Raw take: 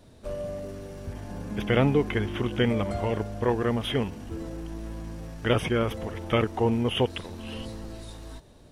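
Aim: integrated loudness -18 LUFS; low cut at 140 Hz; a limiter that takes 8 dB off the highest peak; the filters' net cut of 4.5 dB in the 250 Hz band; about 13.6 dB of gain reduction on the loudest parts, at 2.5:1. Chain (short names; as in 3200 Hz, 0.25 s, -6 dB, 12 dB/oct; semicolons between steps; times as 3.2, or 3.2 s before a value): HPF 140 Hz; bell 250 Hz -5 dB; compressor 2.5:1, threshold -41 dBFS; gain +25 dB; limiter -4.5 dBFS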